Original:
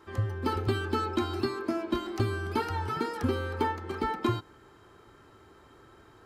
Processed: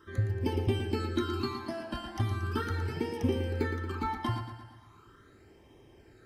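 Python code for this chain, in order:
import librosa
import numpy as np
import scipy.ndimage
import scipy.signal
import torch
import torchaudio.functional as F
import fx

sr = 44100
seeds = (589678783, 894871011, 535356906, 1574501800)

p1 = fx.phaser_stages(x, sr, stages=12, low_hz=380.0, high_hz=1400.0, hz=0.39, feedback_pct=5)
y = p1 + fx.echo_feedback(p1, sr, ms=115, feedback_pct=52, wet_db=-9, dry=0)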